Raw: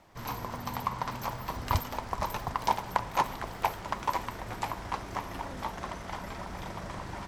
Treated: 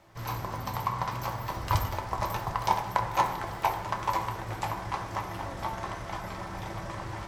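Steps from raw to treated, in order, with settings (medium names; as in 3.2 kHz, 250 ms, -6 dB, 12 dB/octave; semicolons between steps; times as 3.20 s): peaking EQ 250 Hz -6 dB 0.28 oct; on a send: reverberation RT60 1.0 s, pre-delay 4 ms, DRR 3 dB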